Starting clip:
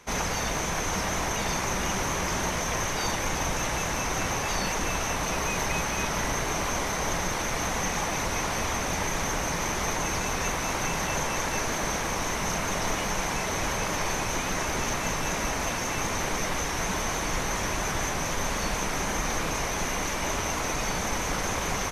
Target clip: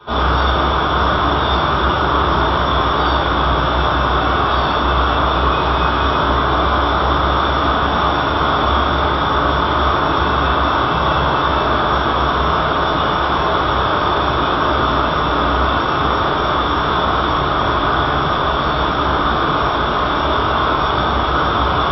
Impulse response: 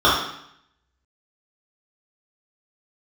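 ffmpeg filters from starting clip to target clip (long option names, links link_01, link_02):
-filter_complex "[0:a]aresample=11025,asoftclip=type=tanh:threshold=-25dB,aresample=44100[link_01];[1:a]atrim=start_sample=2205[link_02];[link_01][link_02]afir=irnorm=-1:irlink=0,volume=-8.5dB"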